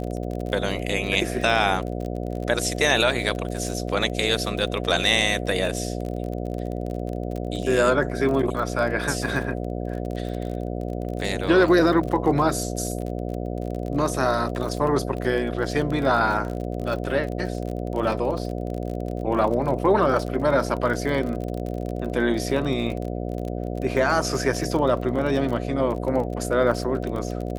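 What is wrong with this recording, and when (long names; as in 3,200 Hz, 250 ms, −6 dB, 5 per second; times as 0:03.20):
mains buzz 60 Hz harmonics 12 −29 dBFS
surface crackle 34 per second −29 dBFS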